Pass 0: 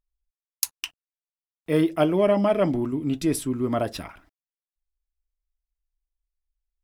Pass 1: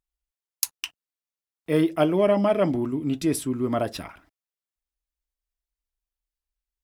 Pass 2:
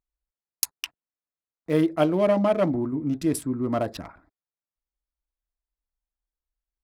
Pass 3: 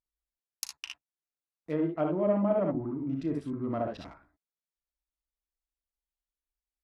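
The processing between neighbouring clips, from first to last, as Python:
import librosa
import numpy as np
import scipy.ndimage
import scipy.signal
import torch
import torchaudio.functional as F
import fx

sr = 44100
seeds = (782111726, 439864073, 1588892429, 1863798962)

y1 = fx.highpass(x, sr, hz=59.0, slope=6)
y2 = fx.wiener(y1, sr, points=15)
y2 = fx.notch(y2, sr, hz=400.0, q=12.0)
y3 = fx.room_early_taps(y2, sr, ms=(36, 60, 74), db=(-11.5, -3.5, -6.5))
y3 = fx.env_lowpass_down(y3, sr, base_hz=1300.0, full_db=-17.5)
y3 = F.gain(torch.from_numpy(y3), -8.5).numpy()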